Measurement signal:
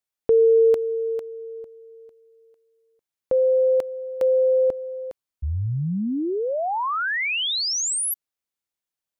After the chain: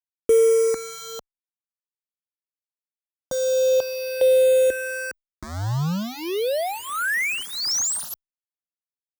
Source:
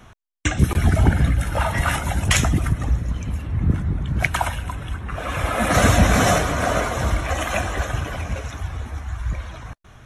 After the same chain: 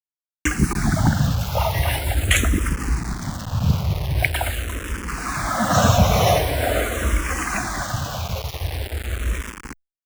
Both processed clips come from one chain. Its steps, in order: bit-crush 5-bit; endless phaser -0.44 Hz; gain +2.5 dB

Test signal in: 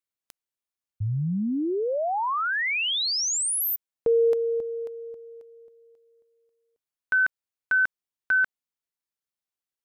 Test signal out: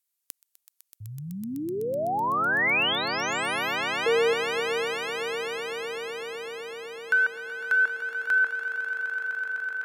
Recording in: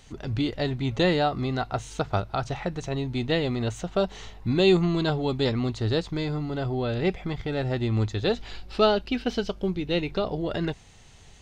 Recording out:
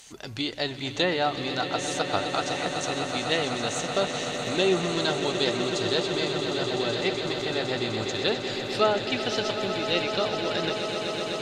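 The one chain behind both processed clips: RIAA curve recording; treble ducked by the level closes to 1700 Hz, closed at -17.5 dBFS; swelling echo 0.126 s, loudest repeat 8, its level -12 dB

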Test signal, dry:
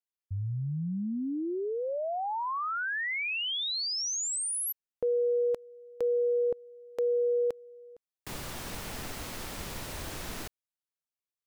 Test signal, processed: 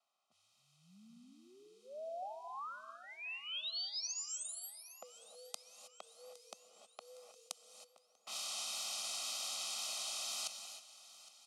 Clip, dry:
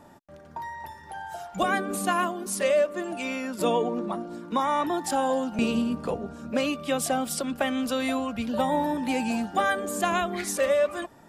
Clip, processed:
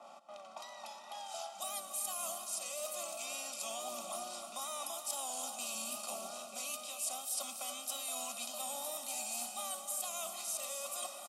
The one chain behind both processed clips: per-bin compression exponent 0.6; wow and flutter 80 cents; low-pass opened by the level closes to 1200 Hz, open at -20 dBFS; differentiator; comb 1.6 ms, depth 76%; dynamic EQ 260 Hz, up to +3 dB, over -56 dBFS, Q 1.4; reverse; compressor, threshold -41 dBFS; reverse; steep high-pass 160 Hz 36 dB/oct; fixed phaser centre 470 Hz, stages 6; feedback echo 0.812 s, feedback 57%, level -18.5 dB; non-linear reverb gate 0.34 s rising, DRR 7.5 dB; gain +4.5 dB

